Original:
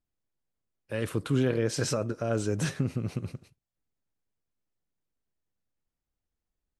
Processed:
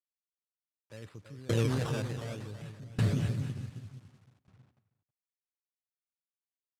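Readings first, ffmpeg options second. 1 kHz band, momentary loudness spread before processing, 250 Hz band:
-4.0 dB, 11 LU, -5.5 dB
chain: -filter_complex "[0:a]acrusher=samples=14:mix=1:aa=0.000001:lfo=1:lforange=14:lforate=0.63,asplit=2[s0][s1];[s1]aecho=0:1:330|594|805.2|974.2|1109:0.631|0.398|0.251|0.158|0.1[s2];[s0][s2]amix=inputs=2:normalize=0,asubboost=boost=6:cutoff=150,acrusher=bits=7:mix=0:aa=0.000001,lowpass=9600,alimiter=limit=0.141:level=0:latency=1:release=18,highpass=88,asplit=2[s3][s4];[s4]adelay=319,lowpass=f=3600:p=1,volume=0.133,asplit=2[s5][s6];[s6]adelay=319,lowpass=f=3600:p=1,volume=0.23[s7];[s5][s7]amix=inputs=2:normalize=0[s8];[s3][s8]amix=inputs=2:normalize=0,aeval=exprs='val(0)*pow(10,-24*if(lt(mod(0.67*n/s,1),2*abs(0.67)/1000),1-mod(0.67*n/s,1)/(2*abs(0.67)/1000),(mod(0.67*n/s,1)-2*abs(0.67)/1000)/(1-2*abs(0.67)/1000))/20)':c=same"

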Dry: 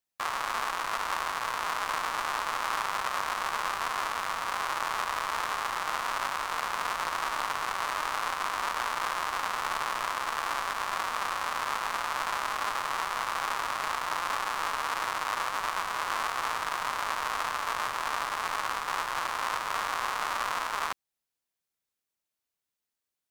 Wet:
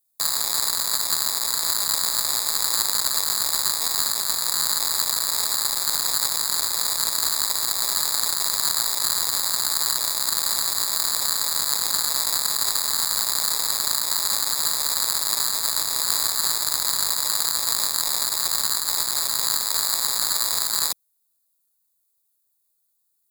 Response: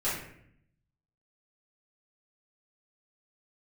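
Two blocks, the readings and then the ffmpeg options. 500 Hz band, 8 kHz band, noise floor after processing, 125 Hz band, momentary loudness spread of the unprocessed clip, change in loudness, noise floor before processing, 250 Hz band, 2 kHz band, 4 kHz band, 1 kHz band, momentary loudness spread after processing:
-1.0 dB, +20.5 dB, -71 dBFS, +5.5 dB, 1 LU, +10.5 dB, under -85 dBFS, +4.0 dB, -3.5 dB, +15.0 dB, -5.0 dB, 1 LU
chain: -filter_complex "[0:a]acrossover=split=280|7900[s0][s1][s2];[s1]acrusher=samples=15:mix=1:aa=0.000001[s3];[s0][s3][s2]amix=inputs=3:normalize=0,aexciter=amount=5.8:drive=7.9:freq=2900,volume=0.668"

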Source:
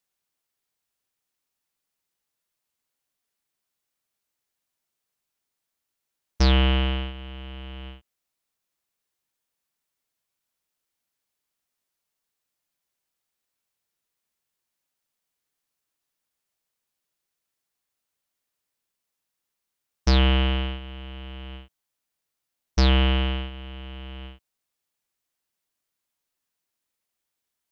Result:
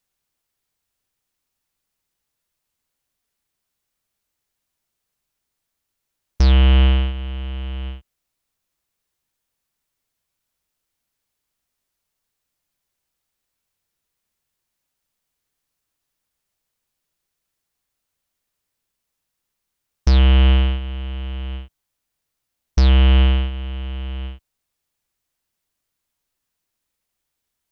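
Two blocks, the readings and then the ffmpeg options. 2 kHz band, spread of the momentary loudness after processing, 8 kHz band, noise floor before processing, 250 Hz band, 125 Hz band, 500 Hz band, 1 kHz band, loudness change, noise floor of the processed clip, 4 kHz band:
+0.5 dB, 17 LU, no reading, -83 dBFS, +2.5 dB, +8.5 dB, +1.0 dB, +0.5 dB, +5.0 dB, -80 dBFS, +0.5 dB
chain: -af "lowshelf=f=110:g=11.5,alimiter=limit=0.266:level=0:latency=1,volume=1.5"

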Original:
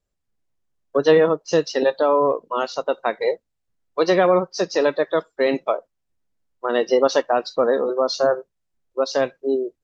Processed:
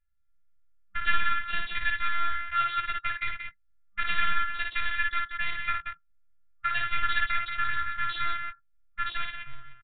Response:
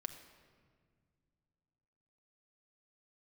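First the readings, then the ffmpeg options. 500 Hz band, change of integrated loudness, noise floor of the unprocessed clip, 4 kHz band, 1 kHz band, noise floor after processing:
-40.0 dB, -9.0 dB, -76 dBFS, -4.0 dB, -5.0 dB, -65 dBFS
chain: -filter_complex "[0:a]aresample=16000,aeval=exprs='clip(val(0),-1,0.0891)':c=same,aresample=44100,equalizer=f=125:t=o:w=1:g=-4,equalizer=f=250:t=o:w=1:g=-10,equalizer=f=1000:t=o:w=1:g=4,equalizer=f=2000:t=o:w=1:g=7,asplit=2[s0][s1];[s1]acompressor=threshold=0.0282:ratio=6,volume=0.944[s2];[s0][s2]amix=inputs=2:normalize=0,afftfilt=real='hypot(re,im)*cos(PI*b)':imag='0':win_size=512:overlap=0.75,afftfilt=real='re*(1-between(b*sr/4096,200,1200))':imag='im*(1-between(b*sr/4096,200,1200))':win_size=4096:overlap=0.75,adynamicsmooth=sensitivity=6.5:basefreq=1500,aecho=1:1:55.39|180.8:0.631|0.447,aresample=8000,aresample=44100"

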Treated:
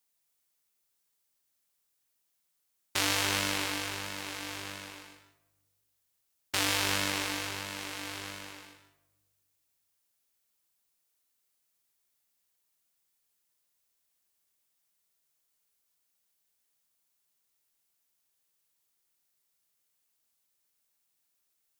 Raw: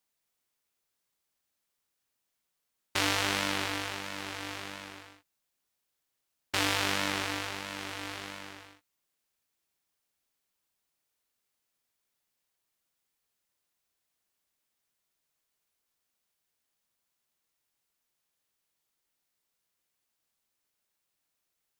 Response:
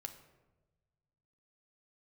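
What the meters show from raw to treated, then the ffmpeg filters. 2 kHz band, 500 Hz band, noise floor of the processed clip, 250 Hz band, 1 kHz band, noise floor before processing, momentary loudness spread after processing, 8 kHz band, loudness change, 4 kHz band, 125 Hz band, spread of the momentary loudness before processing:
-0.5 dB, -1.5 dB, -78 dBFS, -1.0 dB, -2.0 dB, -83 dBFS, 17 LU, +3.5 dB, +0.5 dB, +1.0 dB, 0.0 dB, 17 LU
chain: -filter_complex "[0:a]highshelf=f=5200:g=8.5,asplit=2[s0][s1];[1:a]atrim=start_sample=2205,adelay=141[s2];[s1][s2]afir=irnorm=-1:irlink=0,volume=0.596[s3];[s0][s3]amix=inputs=2:normalize=0,volume=0.75"

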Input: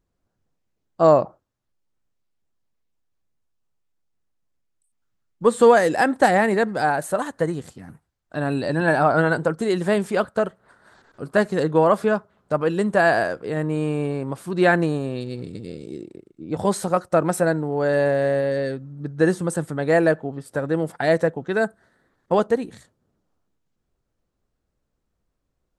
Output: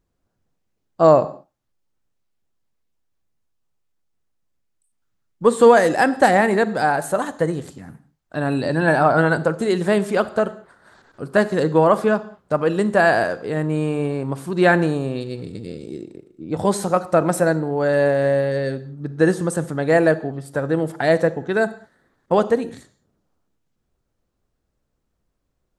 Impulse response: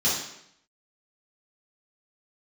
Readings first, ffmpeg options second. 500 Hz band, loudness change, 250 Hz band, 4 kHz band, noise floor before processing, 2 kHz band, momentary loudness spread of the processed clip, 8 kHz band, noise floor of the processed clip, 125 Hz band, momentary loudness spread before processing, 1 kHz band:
+2.0 dB, +2.0 dB, +2.0 dB, +2.0 dB, -76 dBFS, +2.0 dB, 15 LU, +2.0 dB, -74 dBFS, +2.5 dB, 14 LU, +2.0 dB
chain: -filter_complex "[0:a]asplit=2[s0][s1];[1:a]atrim=start_sample=2205,afade=t=out:st=0.23:d=0.01,atrim=end_sample=10584,adelay=32[s2];[s1][s2]afir=irnorm=-1:irlink=0,volume=0.0422[s3];[s0][s3]amix=inputs=2:normalize=0,volume=1.26"

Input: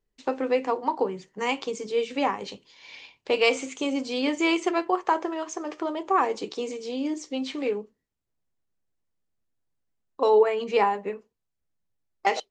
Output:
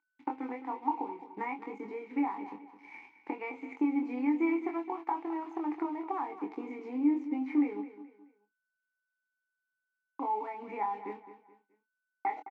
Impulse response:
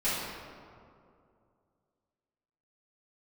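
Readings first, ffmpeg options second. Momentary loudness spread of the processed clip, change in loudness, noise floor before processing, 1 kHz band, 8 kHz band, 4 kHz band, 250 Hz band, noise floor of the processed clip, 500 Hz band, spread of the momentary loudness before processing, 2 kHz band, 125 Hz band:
15 LU, -8.0 dB, -80 dBFS, -8.0 dB, under -30 dB, under -30 dB, -1.5 dB, under -85 dBFS, -16.5 dB, 12 LU, -13.0 dB, no reading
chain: -filter_complex "[0:a]agate=range=0.0224:threshold=0.00316:ratio=3:detection=peak,equalizer=f=630:t=o:w=0.67:g=11,equalizer=f=1600:t=o:w=0.67:g=12,equalizer=f=6300:t=o:w=0.67:g=5,acompressor=threshold=0.0398:ratio=6,highshelf=f=2400:t=q:w=3:g=-11,aeval=exprs='sgn(val(0))*max(abs(val(0))-0.00355,0)':c=same,aeval=exprs='val(0)+0.000631*sin(2*PI*1500*n/s)':c=same,asplit=3[s0][s1][s2];[s0]bandpass=f=300:t=q:w=8,volume=1[s3];[s1]bandpass=f=870:t=q:w=8,volume=0.501[s4];[s2]bandpass=f=2240:t=q:w=8,volume=0.355[s5];[s3][s4][s5]amix=inputs=3:normalize=0,asplit=2[s6][s7];[s7]adelay=24,volume=0.531[s8];[s6][s8]amix=inputs=2:normalize=0,asplit=2[s9][s10];[s10]aecho=0:1:213|426|639:0.224|0.0761|0.0259[s11];[s9][s11]amix=inputs=2:normalize=0,volume=2.51"

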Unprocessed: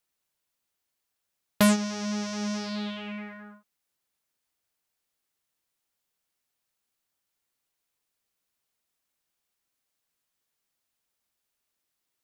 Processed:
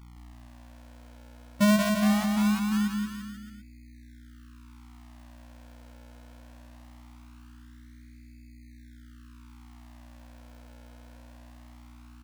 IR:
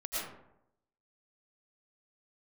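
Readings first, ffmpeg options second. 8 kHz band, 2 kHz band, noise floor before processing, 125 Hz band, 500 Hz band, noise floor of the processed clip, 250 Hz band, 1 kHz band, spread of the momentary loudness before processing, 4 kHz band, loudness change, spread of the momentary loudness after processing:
-2.5 dB, +1.5 dB, -82 dBFS, +4.0 dB, 0.0 dB, -50 dBFS, +4.0 dB, +2.5 dB, 17 LU, -1.0 dB, +2.5 dB, 17 LU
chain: -filter_complex "[0:a]afftfilt=real='re*gte(hypot(re,im),0.282)':imag='im*gte(hypot(re,im),0.282)':win_size=1024:overlap=0.75,lowpass=f=1500:w=0.5412,lowpass=f=1500:w=1.3066,aemphasis=mode=reproduction:type=cd,bandreject=f=188.6:t=h:w=4,bandreject=f=377.2:t=h:w=4,bandreject=f=565.8:t=h:w=4,alimiter=limit=0.0708:level=0:latency=1:release=21,aeval=exprs='val(0)+0.002*(sin(2*PI*60*n/s)+sin(2*PI*2*60*n/s)/2+sin(2*PI*3*60*n/s)/3+sin(2*PI*4*60*n/s)/4+sin(2*PI*5*60*n/s)/5)':c=same,acrusher=samples=38:mix=1:aa=0.000001:lfo=1:lforange=38:lforate=0.21,asplit=2[s0][s1];[s1]aecho=0:1:180|342|487.8|619|737.1:0.631|0.398|0.251|0.158|0.1[s2];[s0][s2]amix=inputs=2:normalize=0,volume=2.24"

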